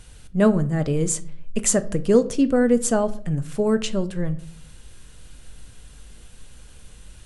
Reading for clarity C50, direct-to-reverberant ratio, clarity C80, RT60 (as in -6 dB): 18.5 dB, 11.0 dB, 22.0 dB, 0.55 s